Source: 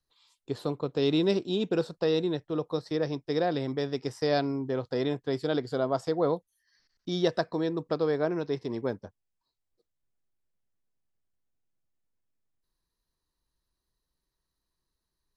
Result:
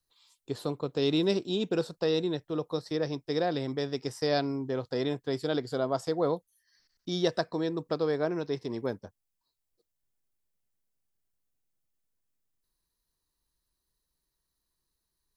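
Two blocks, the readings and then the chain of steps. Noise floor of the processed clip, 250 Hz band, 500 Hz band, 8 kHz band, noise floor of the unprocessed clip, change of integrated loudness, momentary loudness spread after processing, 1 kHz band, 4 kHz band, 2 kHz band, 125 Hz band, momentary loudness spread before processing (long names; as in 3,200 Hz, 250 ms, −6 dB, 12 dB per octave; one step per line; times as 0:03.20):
−83 dBFS, −1.5 dB, −1.5 dB, can't be measured, −84 dBFS, −1.5 dB, 7 LU, −1.5 dB, +1.0 dB, −1.0 dB, −1.5 dB, 7 LU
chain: high-shelf EQ 6,400 Hz +9.5 dB
level −1.5 dB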